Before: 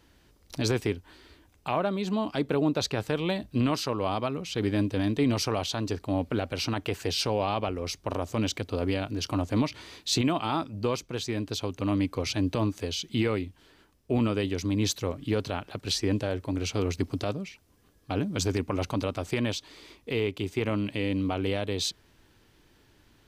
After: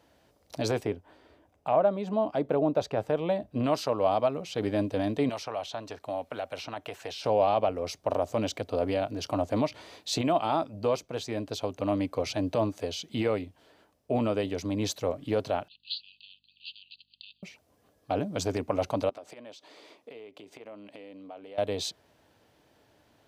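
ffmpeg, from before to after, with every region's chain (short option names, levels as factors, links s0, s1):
-filter_complex "[0:a]asettb=1/sr,asplit=3[s0][s1][s2];[s0]atrim=end=0.834[s3];[s1]atrim=start=0.83:end=3.64,asetpts=PTS-STARTPTS,afade=t=in:d=0.004:c=qsin,afade=t=out:st=2.806:d=0.004:c=qsin,highshelf=f=2300:g=-9,bandreject=f=4200:w=15[s4];[s2]atrim=start=3.636[s5];[s3][s4]acrossfade=d=0.004:c1=hsin:c2=qsin[s6];[s6][s5]acrossfade=d=0.004:c1=qsin:c2=hsin,asettb=1/sr,asplit=3[s7][s8][s9];[s7]atrim=end=5.294[s10];[s8]atrim=start=5.29:end=7.24,asetpts=PTS-STARTPTS,afade=t=in:d=0.004:c=qsin,afade=t=out:st=1.946:d=0.004:c=qsin,bandreject=f=4700:w=14,acrossover=split=680|5500[s11][s12][s13];[s11]acompressor=threshold=0.00891:ratio=4[s14];[s12]acompressor=threshold=0.0178:ratio=4[s15];[s13]acompressor=threshold=0.00224:ratio=4[s16];[s14][s15][s16]amix=inputs=3:normalize=0[s17];[s9]atrim=start=7.236[s18];[s10][s17]acrossfade=d=0.004:c1=hsin:c2=qsin[s19];[s19][s18]acrossfade=d=0.004:c1=qsin:c2=hsin,asettb=1/sr,asplit=3[s20][s21][s22];[s20]atrim=end=15.684[s23];[s21]atrim=start=15.68:end=17.43,asetpts=PTS-STARTPTS,afade=t=in:d=0.004:c=qsin,afade=t=out:st=1.746:d=0.004:c=qsin,asuperpass=centerf=3500:order=20:qfactor=1.7,aeval=exprs='val(0)+0.000224*(sin(2*PI*50*n/s)+sin(2*PI*2*50*n/s)/2+sin(2*PI*3*50*n/s)/3+sin(2*PI*4*50*n/s)/4+sin(2*PI*5*50*n/s)/5)':c=same[s24];[s22]atrim=start=17.426[s25];[s23][s24]acrossfade=d=0.004:c1=hsin:c2=qsin[s26];[s26][s25]acrossfade=d=0.004:c1=qsin:c2=hsin,asettb=1/sr,asplit=3[s27][s28][s29];[s27]atrim=end=19.094[s30];[s28]atrim=start=19.09:end=21.58,asetpts=PTS-STARTPTS,afade=t=in:d=0.004:c=qsin,afade=t=out:st=2.486:d=0.004:c=qsin,highpass=230,highshelf=f=10000:g=-7.5,acompressor=threshold=0.00794:ratio=10:attack=3.2:release=140:knee=1:detection=peak[s31];[s29]atrim=start=21.576[s32];[s30][s31]acrossfade=d=0.004:c1=hsin:c2=qsin[s33];[s33][s32]acrossfade=d=0.004:c1=qsin:c2=hsin,highpass=83,equalizer=f=640:w=1.5:g=12.5,bandreject=f=370:w=12,volume=0.596"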